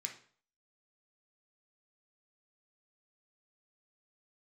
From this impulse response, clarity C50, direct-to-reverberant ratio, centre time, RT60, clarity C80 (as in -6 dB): 9.0 dB, 2.0 dB, 16 ms, 0.50 s, 14.5 dB